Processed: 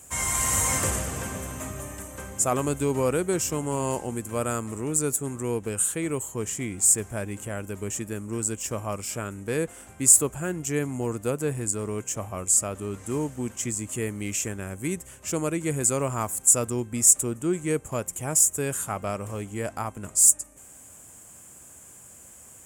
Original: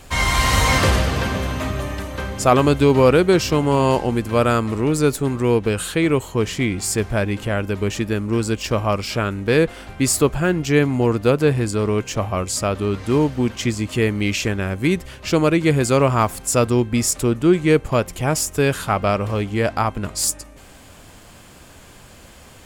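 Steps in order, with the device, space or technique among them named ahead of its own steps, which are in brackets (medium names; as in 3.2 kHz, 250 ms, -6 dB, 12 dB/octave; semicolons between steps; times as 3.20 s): budget condenser microphone (high-pass 66 Hz; resonant high shelf 5.8 kHz +11 dB, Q 3); trim -11 dB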